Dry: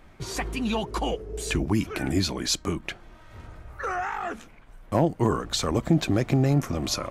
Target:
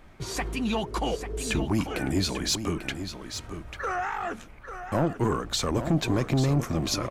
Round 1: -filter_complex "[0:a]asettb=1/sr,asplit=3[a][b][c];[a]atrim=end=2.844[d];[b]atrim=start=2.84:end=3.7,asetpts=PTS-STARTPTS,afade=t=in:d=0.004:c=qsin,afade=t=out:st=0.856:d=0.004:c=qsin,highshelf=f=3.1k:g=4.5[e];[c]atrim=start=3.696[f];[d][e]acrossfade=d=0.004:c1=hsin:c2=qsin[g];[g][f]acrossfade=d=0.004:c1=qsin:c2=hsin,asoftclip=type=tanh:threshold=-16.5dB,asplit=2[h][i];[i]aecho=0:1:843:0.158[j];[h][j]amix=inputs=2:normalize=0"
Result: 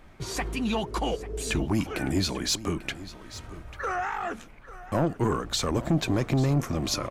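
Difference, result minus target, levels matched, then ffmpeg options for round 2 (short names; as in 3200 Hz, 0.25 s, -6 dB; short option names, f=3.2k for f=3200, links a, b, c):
echo-to-direct -6.5 dB
-filter_complex "[0:a]asettb=1/sr,asplit=3[a][b][c];[a]atrim=end=2.844[d];[b]atrim=start=2.84:end=3.7,asetpts=PTS-STARTPTS,afade=t=in:d=0.004:c=qsin,afade=t=out:st=0.856:d=0.004:c=qsin,highshelf=f=3.1k:g=4.5[e];[c]atrim=start=3.696[f];[d][e]acrossfade=d=0.004:c1=hsin:c2=qsin[g];[g][f]acrossfade=d=0.004:c1=qsin:c2=hsin,asoftclip=type=tanh:threshold=-16.5dB,asplit=2[h][i];[i]aecho=0:1:843:0.335[j];[h][j]amix=inputs=2:normalize=0"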